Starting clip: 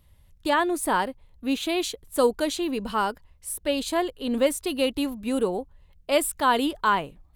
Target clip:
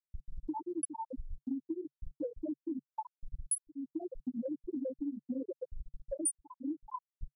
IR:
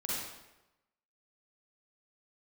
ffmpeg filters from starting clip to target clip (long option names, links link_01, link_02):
-filter_complex "[0:a]aeval=exprs='val(0)+0.5*0.0631*sgn(val(0))':channel_layout=same,alimiter=limit=-16dB:level=0:latency=1:release=22,highshelf=frequency=5900:gain=11[link_01];[1:a]atrim=start_sample=2205,atrim=end_sample=3087,asetrate=66150,aresample=44100[link_02];[link_01][link_02]afir=irnorm=-1:irlink=0,afftfilt=real='re*gte(hypot(re,im),0.501)':imag='im*gte(hypot(re,im),0.501)':win_size=1024:overlap=0.75,aexciter=amount=13.7:drive=5.8:freq=3600,acompressor=threshold=-40dB:ratio=5,equalizer=frequency=140:width_type=o:width=0.53:gain=9.5,volume=2.5dB"